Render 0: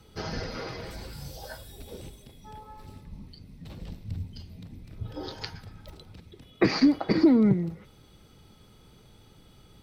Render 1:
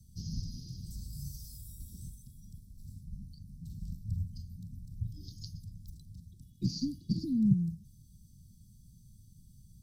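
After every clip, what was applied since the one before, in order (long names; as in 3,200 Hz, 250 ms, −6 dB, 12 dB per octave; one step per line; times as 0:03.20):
inverse Chebyshev band-stop filter 610–1,900 Hz, stop band 70 dB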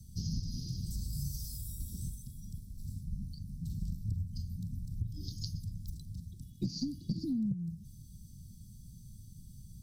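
downward compressor 10 to 1, threshold −37 dBFS, peak gain reduction 18 dB
level +6 dB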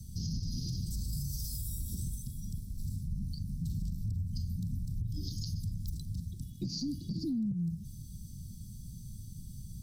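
brickwall limiter −34 dBFS, peak gain reduction 10.5 dB
level +6 dB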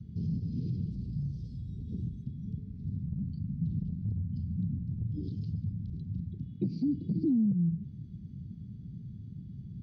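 loudspeaker in its box 120–2,200 Hz, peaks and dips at 440 Hz +6 dB, 1,100 Hz −8 dB, 1,700 Hz −4 dB
level +6.5 dB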